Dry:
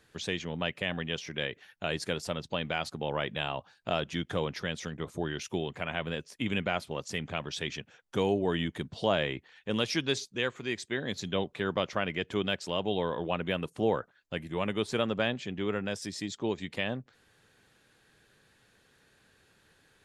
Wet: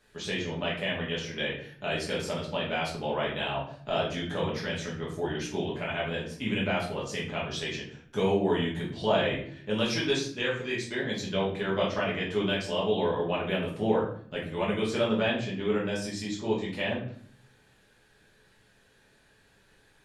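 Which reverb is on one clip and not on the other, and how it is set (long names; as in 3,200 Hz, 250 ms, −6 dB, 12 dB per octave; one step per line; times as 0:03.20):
rectangular room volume 74 cubic metres, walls mixed, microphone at 1.4 metres
level −4.5 dB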